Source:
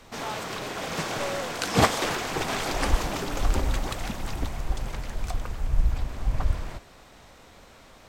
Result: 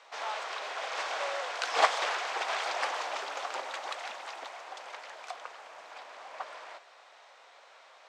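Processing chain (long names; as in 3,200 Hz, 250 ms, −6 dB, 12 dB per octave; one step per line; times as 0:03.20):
high-pass filter 590 Hz 24 dB per octave
high-frequency loss of the air 100 metres
level −1 dB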